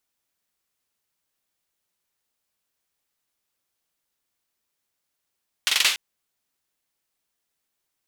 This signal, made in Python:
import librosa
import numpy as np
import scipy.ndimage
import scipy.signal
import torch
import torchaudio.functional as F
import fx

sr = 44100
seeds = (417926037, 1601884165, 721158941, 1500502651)

y = fx.drum_clap(sr, seeds[0], length_s=0.29, bursts=5, spacing_ms=44, hz=2900.0, decay_s=0.41)